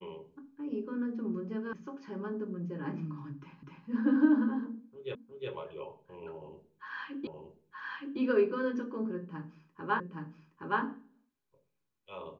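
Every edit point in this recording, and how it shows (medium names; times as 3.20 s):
1.73 s: sound stops dead
3.63 s: repeat of the last 0.25 s
5.15 s: repeat of the last 0.36 s
7.27 s: repeat of the last 0.92 s
10.00 s: repeat of the last 0.82 s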